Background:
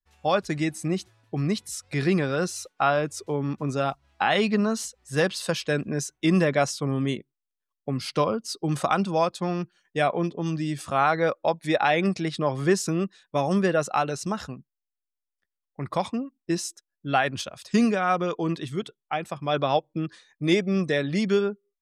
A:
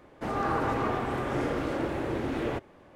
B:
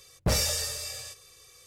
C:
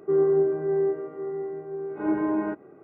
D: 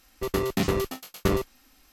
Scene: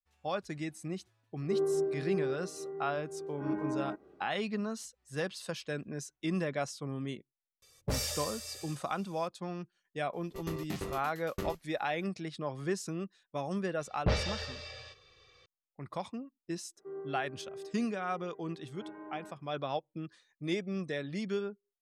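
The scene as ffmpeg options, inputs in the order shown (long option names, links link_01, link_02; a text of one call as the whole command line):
ffmpeg -i bed.wav -i cue0.wav -i cue1.wav -i cue2.wav -i cue3.wav -filter_complex "[3:a]asplit=2[link_01][link_02];[2:a]asplit=2[link_03][link_04];[0:a]volume=-12dB[link_05];[link_04]lowpass=frequency=4000:width=0.5412,lowpass=frequency=4000:width=1.3066[link_06];[link_02]lowshelf=frequency=390:gain=-11[link_07];[link_01]atrim=end=2.83,asetpts=PTS-STARTPTS,volume=-9.5dB,afade=type=in:duration=0.004:curve=hsin,afade=type=out:start_time=2.826:duration=0.004:curve=hsin,adelay=1410[link_08];[link_03]atrim=end=1.66,asetpts=PTS-STARTPTS,volume=-8.5dB,afade=type=in:duration=0.004:curve=hsin,afade=type=out:start_time=1.656:duration=0.004:curve=hsin,adelay=336042S[link_09];[4:a]atrim=end=1.92,asetpts=PTS-STARTPTS,volume=-14dB,afade=type=in:duration=0.004:curve=hsin,afade=type=out:start_time=1.916:duration=0.004:curve=hsin,adelay=10130[link_10];[link_06]atrim=end=1.66,asetpts=PTS-STARTPTS,volume=-2.5dB,afade=type=in:duration=0.004:curve=hsin,afade=type=out:start_time=1.656:duration=0.004:curve=hsin,adelay=608580S[link_11];[link_07]atrim=end=2.83,asetpts=PTS-STARTPTS,volume=-16dB,afade=type=in:duration=0.004:curve=hsin,afade=type=out:start_time=2.826:duration=0.004:curve=hsin,adelay=16770[link_12];[link_05][link_08][link_09][link_10][link_11][link_12]amix=inputs=6:normalize=0" out.wav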